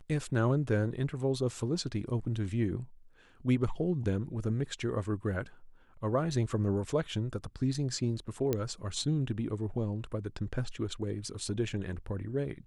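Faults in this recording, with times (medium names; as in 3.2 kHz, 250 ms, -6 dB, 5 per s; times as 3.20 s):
8.53 s: pop -16 dBFS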